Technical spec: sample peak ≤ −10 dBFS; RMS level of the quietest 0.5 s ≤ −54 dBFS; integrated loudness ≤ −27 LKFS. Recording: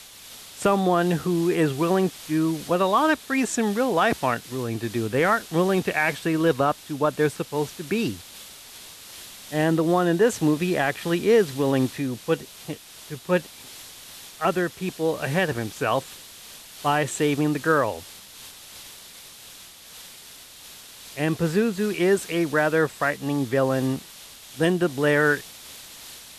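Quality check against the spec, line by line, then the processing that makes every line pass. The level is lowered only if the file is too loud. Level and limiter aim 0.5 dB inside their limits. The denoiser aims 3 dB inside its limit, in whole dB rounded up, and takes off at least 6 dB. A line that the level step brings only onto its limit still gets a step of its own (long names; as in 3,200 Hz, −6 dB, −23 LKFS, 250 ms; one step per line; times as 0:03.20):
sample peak −9.0 dBFS: out of spec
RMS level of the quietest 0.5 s −45 dBFS: out of spec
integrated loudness −23.5 LKFS: out of spec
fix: broadband denoise 8 dB, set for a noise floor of −45 dBFS
level −4 dB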